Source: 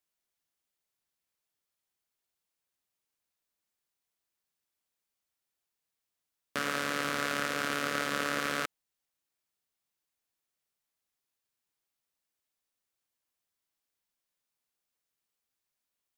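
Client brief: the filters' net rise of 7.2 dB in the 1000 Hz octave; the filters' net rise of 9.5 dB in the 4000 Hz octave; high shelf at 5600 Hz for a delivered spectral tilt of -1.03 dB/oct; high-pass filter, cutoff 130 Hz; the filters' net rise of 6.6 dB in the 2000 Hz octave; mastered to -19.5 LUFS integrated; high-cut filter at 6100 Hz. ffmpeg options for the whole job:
-af "highpass=130,lowpass=6.1k,equalizer=f=1k:t=o:g=7.5,equalizer=f=2k:t=o:g=3,equalizer=f=4k:t=o:g=8,highshelf=f=5.6k:g=9,volume=6dB"

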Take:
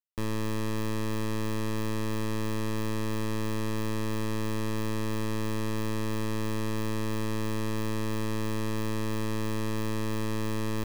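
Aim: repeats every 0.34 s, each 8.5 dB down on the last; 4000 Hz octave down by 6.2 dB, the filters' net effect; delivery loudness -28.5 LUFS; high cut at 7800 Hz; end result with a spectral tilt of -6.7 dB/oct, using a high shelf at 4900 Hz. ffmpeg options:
-af "lowpass=7.8k,equalizer=f=4k:t=o:g=-6,highshelf=f=4.9k:g=-3.5,aecho=1:1:340|680|1020|1360:0.376|0.143|0.0543|0.0206,volume=2.5dB"

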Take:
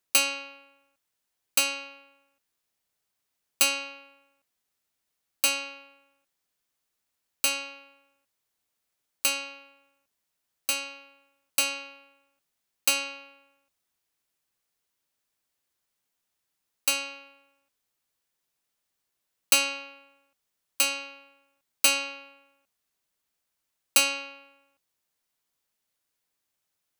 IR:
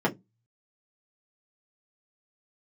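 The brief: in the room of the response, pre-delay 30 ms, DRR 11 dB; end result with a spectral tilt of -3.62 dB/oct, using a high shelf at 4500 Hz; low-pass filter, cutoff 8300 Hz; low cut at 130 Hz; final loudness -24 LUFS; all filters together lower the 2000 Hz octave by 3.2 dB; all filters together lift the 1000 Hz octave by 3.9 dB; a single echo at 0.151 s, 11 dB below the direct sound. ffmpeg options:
-filter_complex "[0:a]highpass=130,lowpass=8.3k,equalizer=f=1k:t=o:g=7,equalizer=f=2k:t=o:g=-5,highshelf=f=4.5k:g=-3,aecho=1:1:151:0.282,asplit=2[a][b];[1:a]atrim=start_sample=2205,adelay=30[c];[b][c]afir=irnorm=-1:irlink=0,volume=-23.5dB[d];[a][d]amix=inputs=2:normalize=0,volume=6.5dB"

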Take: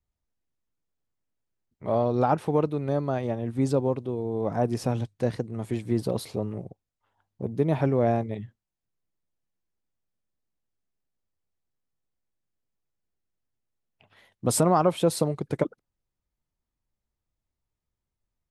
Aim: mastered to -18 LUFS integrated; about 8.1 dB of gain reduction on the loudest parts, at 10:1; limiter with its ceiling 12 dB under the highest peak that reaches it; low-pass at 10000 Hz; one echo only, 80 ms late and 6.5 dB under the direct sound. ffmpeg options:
-af "lowpass=10k,acompressor=threshold=-25dB:ratio=10,alimiter=level_in=2.5dB:limit=-24dB:level=0:latency=1,volume=-2.5dB,aecho=1:1:80:0.473,volume=18.5dB"

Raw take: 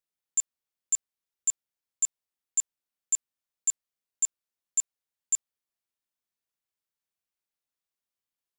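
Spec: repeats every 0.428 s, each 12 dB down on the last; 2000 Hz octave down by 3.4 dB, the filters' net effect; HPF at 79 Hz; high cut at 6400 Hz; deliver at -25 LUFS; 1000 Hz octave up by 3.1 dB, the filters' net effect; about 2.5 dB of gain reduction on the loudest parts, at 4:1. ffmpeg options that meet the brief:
-af "highpass=79,lowpass=6.4k,equalizer=f=1k:t=o:g=5.5,equalizer=f=2k:t=o:g=-6,acompressor=threshold=-29dB:ratio=4,aecho=1:1:428|856|1284:0.251|0.0628|0.0157,volume=12.5dB"

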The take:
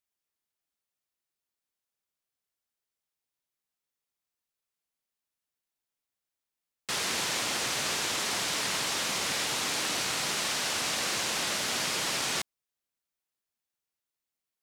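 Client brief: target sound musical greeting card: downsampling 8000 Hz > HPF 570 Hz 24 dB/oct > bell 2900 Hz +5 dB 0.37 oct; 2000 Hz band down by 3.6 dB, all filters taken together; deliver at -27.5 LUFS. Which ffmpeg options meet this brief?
-af "equalizer=f=2k:t=o:g=-6.5,aresample=8000,aresample=44100,highpass=f=570:w=0.5412,highpass=f=570:w=1.3066,equalizer=f=2.9k:t=o:w=0.37:g=5,volume=6dB"

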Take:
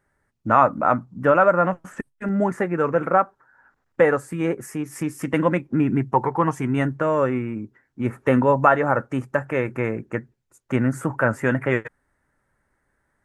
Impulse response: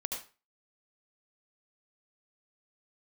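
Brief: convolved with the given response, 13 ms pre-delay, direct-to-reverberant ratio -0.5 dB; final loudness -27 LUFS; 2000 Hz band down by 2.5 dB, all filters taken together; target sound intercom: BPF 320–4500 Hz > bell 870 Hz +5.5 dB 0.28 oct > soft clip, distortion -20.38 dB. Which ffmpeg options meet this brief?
-filter_complex "[0:a]equalizer=f=2k:t=o:g=-3.5,asplit=2[a][b];[1:a]atrim=start_sample=2205,adelay=13[c];[b][c]afir=irnorm=-1:irlink=0,volume=-1.5dB[d];[a][d]amix=inputs=2:normalize=0,highpass=320,lowpass=4.5k,equalizer=f=870:t=o:w=0.28:g=5.5,asoftclip=threshold=-3.5dB,volume=-7dB"

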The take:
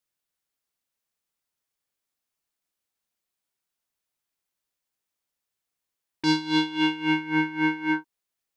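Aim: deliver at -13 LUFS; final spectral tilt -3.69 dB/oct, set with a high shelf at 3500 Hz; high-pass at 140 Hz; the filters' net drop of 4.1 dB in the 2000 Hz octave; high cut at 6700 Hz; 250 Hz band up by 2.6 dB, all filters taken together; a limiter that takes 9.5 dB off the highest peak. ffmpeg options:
-af "highpass=140,lowpass=6.7k,equalizer=f=250:t=o:g=4,equalizer=f=2k:t=o:g=-4.5,highshelf=f=3.5k:g=-3.5,volume=16.5dB,alimiter=limit=-4dB:level=0:latency=1"

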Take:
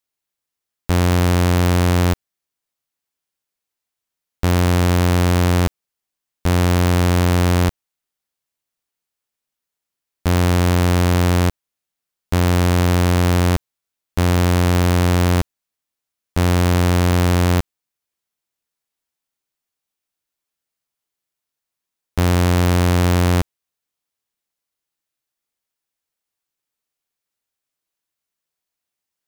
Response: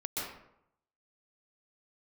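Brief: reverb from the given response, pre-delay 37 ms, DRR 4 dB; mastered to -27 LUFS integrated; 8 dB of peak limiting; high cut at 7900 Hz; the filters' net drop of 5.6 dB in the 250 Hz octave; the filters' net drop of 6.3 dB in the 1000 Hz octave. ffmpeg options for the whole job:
-filter_complex "[0:a]lowpass=7.9k,equalizer=f=250:t=o:g=-8.5,equalizer=f=1k:t=o:g=-8,alimiter=limit=-19dB:level=0:latency=1,asplit=2[a][b];[1:a]atrim=start_sample=2205,adelay=37[c];[b][c]afir=irnorm=-1:irlink=0,volume=-8dB[d];[a][d]amix=inputs=2:normalize=0,volume=-2.5dB"

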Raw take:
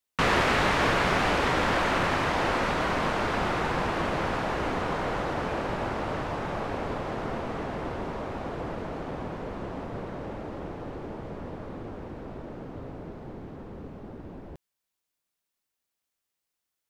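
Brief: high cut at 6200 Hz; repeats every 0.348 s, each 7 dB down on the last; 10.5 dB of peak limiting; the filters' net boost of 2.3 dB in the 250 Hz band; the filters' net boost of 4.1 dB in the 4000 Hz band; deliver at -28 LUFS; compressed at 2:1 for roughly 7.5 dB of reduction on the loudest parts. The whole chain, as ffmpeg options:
-af "lowpass=6.2k,equalizer=f=250:t=o:g=3,equalizer=f=4k:t=o:g=6,acompressor=threshold=-33dB:ratio=2,alimiter=level_in=0.5dB:limit=-24dB:level=0:latency=1,volume=-0.5dB,aecho=1:1:348|696|1044|1392|1740:0.447|0.201|0.0905|0.0407|0.0183,volume=6.5dB"

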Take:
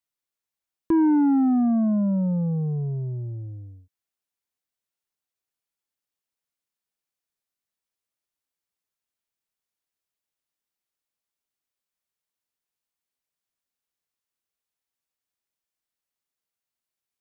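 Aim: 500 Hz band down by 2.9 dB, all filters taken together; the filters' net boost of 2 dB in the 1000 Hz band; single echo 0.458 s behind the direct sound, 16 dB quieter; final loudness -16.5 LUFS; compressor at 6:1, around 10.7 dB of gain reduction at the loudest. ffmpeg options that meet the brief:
-af "equalizer=f=500:t=o:g=-7,equalizer=f=1k:t=o:g=5,acompressor=threshold=-31dB:ratio=6,aecho=1:1:458:0.158,volume=17dB"

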